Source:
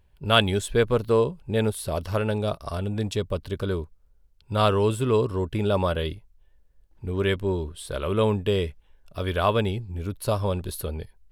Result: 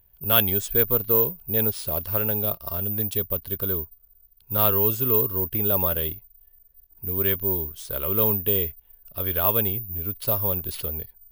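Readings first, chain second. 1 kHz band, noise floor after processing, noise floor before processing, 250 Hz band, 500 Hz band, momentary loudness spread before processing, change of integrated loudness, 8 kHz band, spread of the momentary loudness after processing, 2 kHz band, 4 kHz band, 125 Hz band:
-4.5 dB, -58 dBFS, -59 dBFS, -4.0 dB, -4.0 dB, 11 LU, +3.5 dB, +3.0 dB, 10 LU, -4.5 dB, -4.5 dB, -4.0 dB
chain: in parallel at -11 dB: overload inside the chain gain 18 dB; on the sum: careless resampling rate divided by 3×, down none, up zero stuff; trim -6 dB

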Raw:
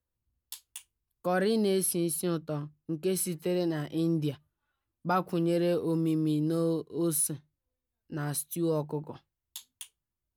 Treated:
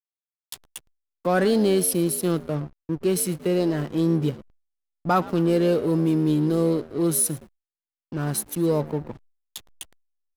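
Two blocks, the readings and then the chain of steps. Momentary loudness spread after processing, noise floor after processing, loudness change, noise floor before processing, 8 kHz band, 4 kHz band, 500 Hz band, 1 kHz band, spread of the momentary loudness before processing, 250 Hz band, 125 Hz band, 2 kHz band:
21 LU, under -85 dBFS, +6.5 dB, under -85 dBFS, +6.0 dB, +5.5 dB, +7.0 dB, +7.0 dB, 19 LU, +7.0 dB, +7.0 dB, +6.5 dB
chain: frequency-shifting echo 114 ms, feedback 41%, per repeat +71 Hz, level -17 dB; hysteresis with a dead band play -38 dBFS; expander -53 dBFS; trim +7 dB

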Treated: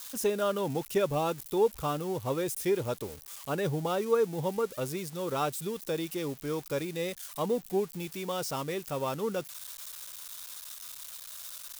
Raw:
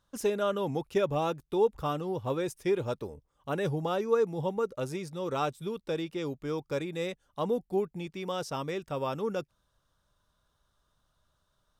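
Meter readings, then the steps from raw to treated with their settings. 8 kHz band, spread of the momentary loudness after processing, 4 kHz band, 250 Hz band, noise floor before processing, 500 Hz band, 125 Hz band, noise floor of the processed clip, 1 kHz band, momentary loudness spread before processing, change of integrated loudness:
+10.0 dB, 12 LU, +2.5 dB, 0.0 dB, -76 dBFS, 0.0 dB, 0.0 dB, -49 dBFS, 0.0 dB, 8 LU, -0.5 dB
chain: zero-crossing glitches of -32.5 dBFS

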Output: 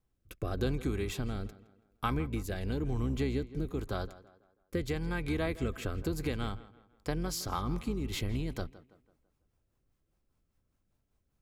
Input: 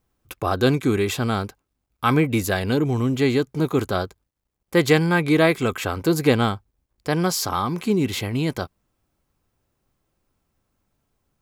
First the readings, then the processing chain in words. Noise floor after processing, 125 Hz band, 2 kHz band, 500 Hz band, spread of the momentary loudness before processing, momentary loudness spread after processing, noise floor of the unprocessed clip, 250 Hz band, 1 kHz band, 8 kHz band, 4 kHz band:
-78 dBFS, -11.0 dB, -16.5 dB, -15.5 dB, 9 LU, 7 LU, -77 dBFS, -14.0 dB, -15.0 dB, -13.5 dB, -14.0 dB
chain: octave divider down 2 oct, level -4 dB; bass shelf 110 Hz +6 dB; compression 5:1, threshold -21 dBFS, peak gain reduction 11 dB; rotary cabinet horn 0.9 Hz, later 5 Hz, at 6.58 s; tape echo 164 ms, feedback 44%, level -16 dB, low-pass 3.1 kHz; trim -7 dB

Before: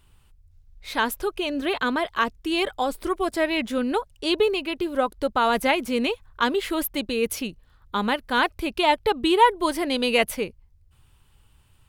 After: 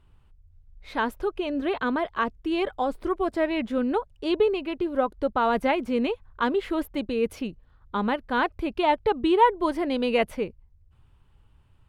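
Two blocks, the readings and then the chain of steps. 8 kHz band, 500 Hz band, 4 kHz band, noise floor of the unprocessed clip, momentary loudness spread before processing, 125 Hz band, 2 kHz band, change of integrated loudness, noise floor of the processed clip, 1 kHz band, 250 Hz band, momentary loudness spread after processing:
under -15 dB, -0.5 dB, -9.0 dB, -58 dBFS, 7 LU, 0.0 dB, -5.5 dB, -2.0 dB, -59 dBFS, -2.0 dB, -0.5 dB, 6 LU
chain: low-pass 1.2 kHz 6 dB/octave

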